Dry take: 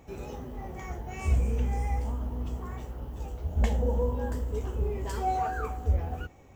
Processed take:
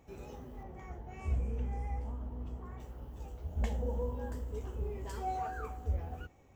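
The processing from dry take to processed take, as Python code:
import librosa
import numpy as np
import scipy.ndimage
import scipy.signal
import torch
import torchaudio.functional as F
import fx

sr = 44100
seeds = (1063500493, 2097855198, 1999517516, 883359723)

y = fx.high_shelf(x, sr, hz=3200.0, db=-10.5, at=(0.63, 2.8))
y = y * librosa.db_to_amplitude(-8.0)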